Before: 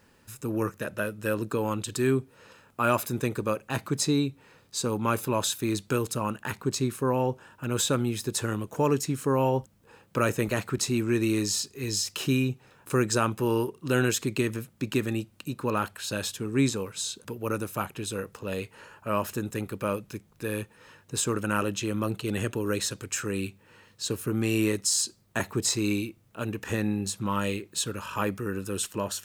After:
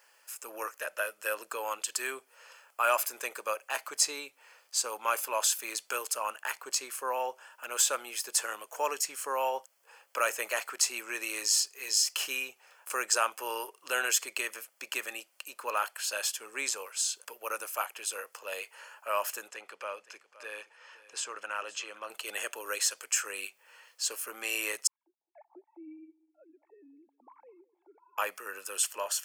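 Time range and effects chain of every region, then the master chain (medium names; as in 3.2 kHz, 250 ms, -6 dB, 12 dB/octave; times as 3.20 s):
19.48–22.10 s: low-pass 5.3 kHz + compression 1.5:1, threshold -36 dBFS + delay 519 ms -17.5 dB
24.87–28.18 s: formants replaced by sine waves + cascade formant filter u + filtered feedback delay 206 ms, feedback 29%, low-pass 1.3 kHz, level -21 dB
whole clip: Chebyshev high-pass 600 Hz, order 3; tilt shelf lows -3.5 dB, about 1.2 kHz; band-stop 3.8 kHz, Q 5.1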